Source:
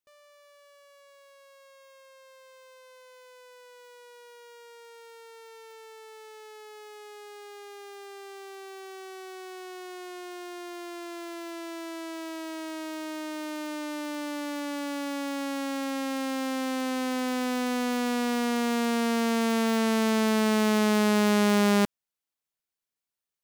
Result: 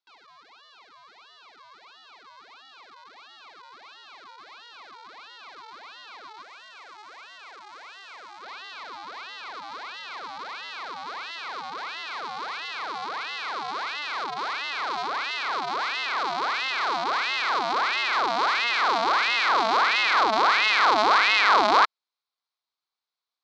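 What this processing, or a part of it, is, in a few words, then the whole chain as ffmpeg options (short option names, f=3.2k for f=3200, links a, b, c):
voice changer toy: -filter_complex "[0:a]aeval=exprs='val(0)*sin(2*PI*1400*n/s+1400*0.7/1.5*sin(2*PI*1.5*n/s))':c=same,highpass=550,equalizer=f=570:t=q:w=4:g=-6,equalizer=f=1.1k:t=q:w=4:g=4,equalizer=f=1.8k:t=q:w=4:g=-8,equalizer=f=2.8k:t=q:w=4:g=-7,equalizer=f=4.1k:t=q:w=4:g=6,lowpass=f=4.8k:w=0.5412,lowpass=f=4.8k:w=1.3066,asettb=1/sr,asplit=3[a][b][c];[a]atrim=end=6.424[d];[b]atrim=start=6.42:end=8.43,asetpts=PTS-STARTPTS,afade=t=in:d=0.004:c=qsin,afade=t=out:st=2.006:d=0.004:c=qsin,equalizer=f=125:t=o:w=1:g=-7,equalizer=f=250:t=o:w=1:g=-8,equalizer=f=1k:t=o:w=1:g=-4,equalizer=f=4k:t=o:w=1:g=-6,equalizer=f=8k:t=o:w=1:g=4[e];[c]atrim=start=8.426[f];[d][e]acrossfade=d=0.004:c1=hsin:c2=qsin[g];[g][f]acrossfade=d=0.004:c1=qsin:c2=hsin,volume=8.5dB"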